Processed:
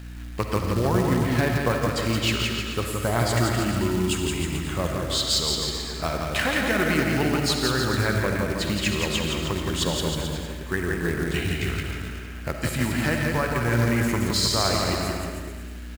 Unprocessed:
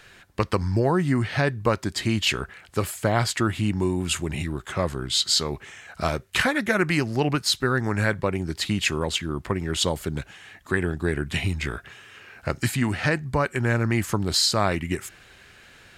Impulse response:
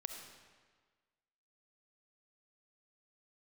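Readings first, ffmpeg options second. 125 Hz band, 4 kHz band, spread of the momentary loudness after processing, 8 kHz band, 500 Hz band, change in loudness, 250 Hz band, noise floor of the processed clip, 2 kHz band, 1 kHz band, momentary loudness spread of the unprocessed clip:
+0.5 dB, +0.5 dB, 8 LU, +0.5 dB, +0.5 dB, +0.5 dB, +1.0 dB, -35 dBFS, 0.0 dB, +0.5 dB, 10 LU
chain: -filter_complex "[0:a]aeval=exprs='val(0)+0.02*(sin(2*PI*60*n/s)+sin(2*PI*2*60*n/s)/2+sin(2*PI*3*60*n/s)/3+sin(2*PI*4*60*n/s)/4+sin(2*PI*5*60*n/s)/5)':c=same,aecho=1:1:170|314.5|437.3|541.7|630.5:0.631|0.398|0.251|0.158|0.1[a];[1:a]atrim=start_sample=2205[b];[a][b]afir=irnorm=-1:irlink=0,acrusher=bits=4:mode=log:mix=0:aa=0.000001"

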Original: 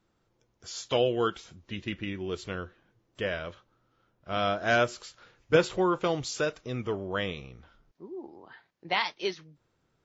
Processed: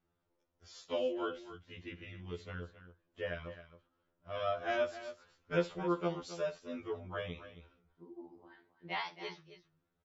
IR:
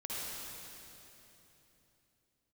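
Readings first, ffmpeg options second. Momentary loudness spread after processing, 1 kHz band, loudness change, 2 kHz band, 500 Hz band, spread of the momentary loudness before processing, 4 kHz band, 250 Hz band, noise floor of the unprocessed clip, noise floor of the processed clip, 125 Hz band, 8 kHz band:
20 LU, -9.5 dB, -9.0 dB, -11.0 dB, -8.5 dB, 19 LU, -12.5 dB, -8.0 dB, -74 dBFS, -82 dBFS, -9.0 dB, n/a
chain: -af "aemphasis=mode=reproduction:type=50fm,aecho=1:1:63|268:0.133|0.224,afftfilt=real='re*2*eq(mod(b,4),0)':imag='im*2*eq(mod(b,4),0)':win_size=2048:overlap=0.75,volume=-7dB"

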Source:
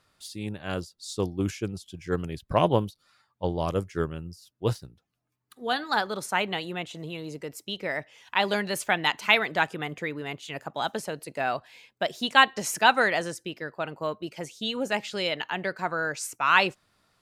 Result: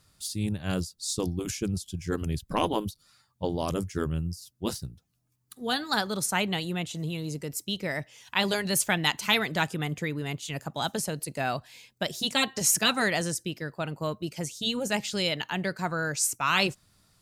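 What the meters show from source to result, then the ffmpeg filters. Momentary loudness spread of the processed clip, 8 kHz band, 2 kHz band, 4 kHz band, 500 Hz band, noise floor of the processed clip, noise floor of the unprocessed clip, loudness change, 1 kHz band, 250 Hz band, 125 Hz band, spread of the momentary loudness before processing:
10 LU, +8.5 dB, -4.0 dB, +1.0 dB, -3.0 dB, -71 dBFS, -74 dBFS, -1.5 dB, -5.5 dB, +2.0 dB, +2.0 dB, 15 LU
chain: -af "bass=f=250:g=12,treble=f=4k:g=12,afftfilt=real='re*lt(hypot(re,im),0.631)':imag='im*lt(hypot(re,im),0.631)':win_size=1024:overlap=0.75,volume=-2.5dB"

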